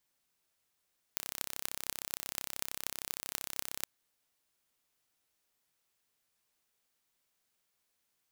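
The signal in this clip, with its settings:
impulse train 33 per second, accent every 8, −5.5 dBFS 2.67 s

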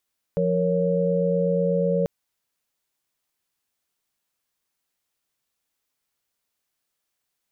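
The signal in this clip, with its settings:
held notes F3/A#4/C#5 sine, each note −23.5 dBFS 1.69 s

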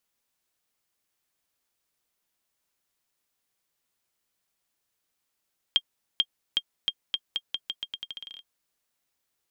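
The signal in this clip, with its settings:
bouncing ball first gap 0.44 s, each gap 0.84, 3,210 Hz, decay 54 ms −9.5 dBFS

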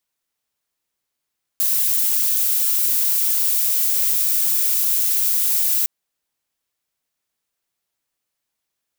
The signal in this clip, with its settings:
noise violet, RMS −18.5 dBFS 4.26 s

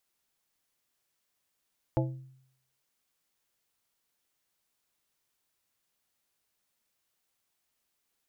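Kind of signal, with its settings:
struck glass plate, lowest mode 131 Hz, modes 5, decay 0.71 s, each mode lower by 2 dB, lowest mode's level −24 dB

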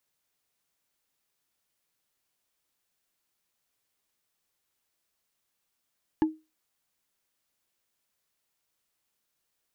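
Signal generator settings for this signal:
struck wood, lowest mode 314 Hz, decay 0.25 s, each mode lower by 8.5 dB, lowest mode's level −16.5 dB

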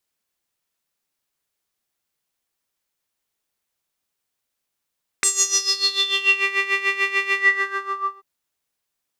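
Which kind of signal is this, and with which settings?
subtractive patch with tremolo G4, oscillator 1 square, oscillator 2 saw, interval +12 semitones, oscillator 2 level −14 dB, sub −28 dB, filter bandpass, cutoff 1,000 Hz, Q 10, filter envelope 3 octaves, filter decay 1.25 s, attack 1.1 ms, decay 0.52 s, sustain −6 dB, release 0.89 s, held 2.10 s, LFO 6.8 Hz, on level 13 dB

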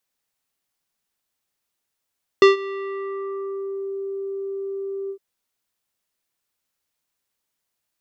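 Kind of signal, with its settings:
subtractive voice square G4 24 dB per octave, low-pass 590 Hz, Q 0.79, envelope 3 octaves, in 1.51 s, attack 1.8 ms, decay 0.14 s, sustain −20.5 dB, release 0.08 s, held 2.68 s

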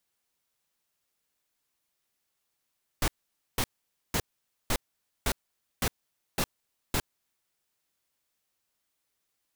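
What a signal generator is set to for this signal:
noise bursts pink, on 0.06 s, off 0.50 s, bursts 8, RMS −26.5 dBFS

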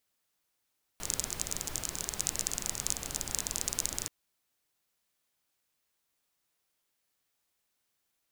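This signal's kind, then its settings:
rain-like ticks over hiss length 3.08 s, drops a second 25, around 6,900 Hz, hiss −5.5 dB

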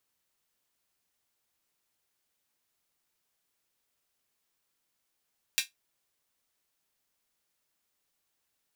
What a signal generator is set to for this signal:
closed synth hi-hat, high-pass 2,500 Hz, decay 0.15 s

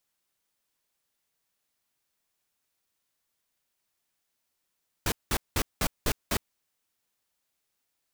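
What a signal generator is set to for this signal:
noise bursts pink, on 0.06 s, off 0.19 s, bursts 6, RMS −26 dBFS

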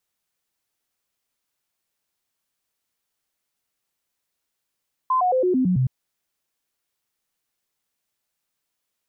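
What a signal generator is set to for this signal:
stepped sweep 1,030 Hz down, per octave 2, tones 7, 0.11 s, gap 0.00 s −16.5 dBFS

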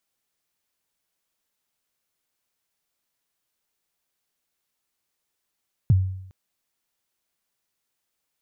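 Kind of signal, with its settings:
synth kick length 0.41 s, from 150 Hz, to 94 Hz, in 28 ms, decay 0.74 s, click off, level −11 dB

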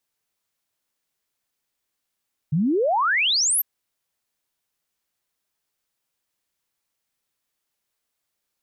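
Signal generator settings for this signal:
exponential sine sweep 140 Hz → 13,000 Hz 1.10 s −17.5 dBFS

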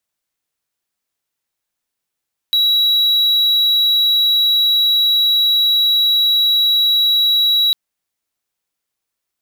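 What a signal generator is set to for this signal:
tone triangle 3,890 Hz −9 dBFS 5.20 s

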